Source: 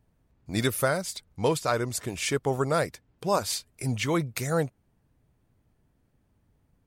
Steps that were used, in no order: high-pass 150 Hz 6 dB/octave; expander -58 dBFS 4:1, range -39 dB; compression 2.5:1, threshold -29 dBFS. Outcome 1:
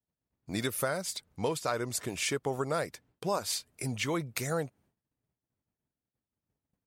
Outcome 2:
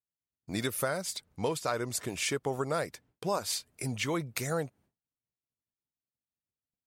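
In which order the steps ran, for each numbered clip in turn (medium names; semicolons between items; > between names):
compression > expander > high-pass; compression > high-pass > expander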